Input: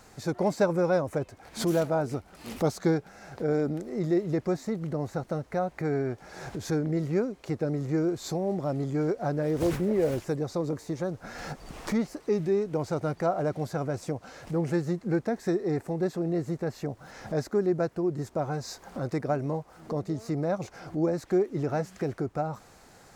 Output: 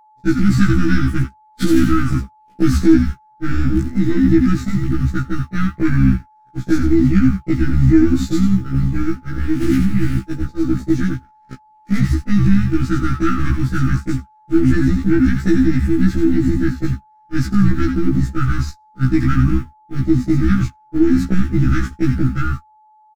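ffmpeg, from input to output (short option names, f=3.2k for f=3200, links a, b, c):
-filter_complex "[0:a]aeval=exprs='if(lt(val(0),0),0.447*val(0),val(0))':c=same,asettb=1/sr,asplit=3[a][b][c];[a]atrim=end=8.474[d];[b]atrim=start=8.47:end=10.71,asetpts=PTS-STARTPTS,afade=t=in:d=0.004:c=qsin,afade=t=out:st=2.236:d=0.004:c=qsin,flanger=delay=8.5:depth=8.7:regen=-48:speed=1.1:shape=sinusoidal[e];[c]atrim=start=10.706[f];[d][e]acrossfade=d=0.004:c1=hsin:c2=qsin[g];[g][f]acrossfade=d=0.004:c1=qsin:c2=hsin,afftfilt=real='re*(1-between(b*sr/4096,350,1200))':imag='im*(1-between(b*sr/4096,350,1200))':win_size=4096:overlap=0.75,adynamicequalizer=threshold=0.00251:dfrequency=1400:dqfactor=2:tfrequency=1400:tqfactor=2:attack=5:release=100:ratio=0.375:range=2.5:mode=cutabove:tftype=bell,acrusher=bits=10:mix=0:aa=0.000001,highshelf=f=2.9k:g=-8,asplit=6[h][i][j][k][l][m];[i]adelay=84,afreqshift=-77,volume=-6dB[n];[j]adelay=168,afreqshift=-154,volume=-14dB[o];[k]adelay=252,afreqshift=-231,volume=-21.9dB[p];[l]adelay=336,afreqshift=-308,volume=-29.9dB[q];[m]adelay=420,afreqshift=-385,volume=-37.8dB[r];[h][n][o][p][q][r]amix=inputs=6:normalize=0,agate=range=-51dB:threshold=-36dB:ratio=16:detection=peak,asoftclip=type=tanh:threshold=-16dB,aeval=exprs='val(0)+0.00141*sin(2*PI*860*n/s)':c=same,alimiter=level_in=24dB:limit=-1dB:release=50:level=0:latency=1,afftfilt=real='re*1.73*eq(mod(b,3),0)':imag='im*1.73*eq(mod(b,3),0)':win_size=2048:overlap=0.75,volume=-2dB"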